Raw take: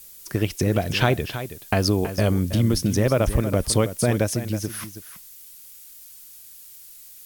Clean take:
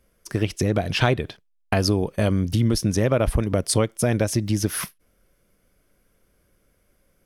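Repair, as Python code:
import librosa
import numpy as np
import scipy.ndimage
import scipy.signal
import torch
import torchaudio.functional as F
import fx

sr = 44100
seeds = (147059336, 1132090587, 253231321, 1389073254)

y = fx.noise_reduce(x, sr, print_start_s=5.45, print_end_s=5.95, reduce_db=20.0)
y = fx.fix_echo_inverse(y, sr, delay_ms=323, level_db=-11.5)
y = fx.gain(y, sr, db=fx.steps((0.0, 0.0), (4.34, 6.0)))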